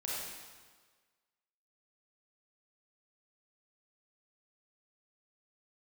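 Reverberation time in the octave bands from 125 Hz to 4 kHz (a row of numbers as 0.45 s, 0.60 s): 1.4 s, 1.4 s, 1.5 s, 1.5 s, 1.4 s, 1.4 s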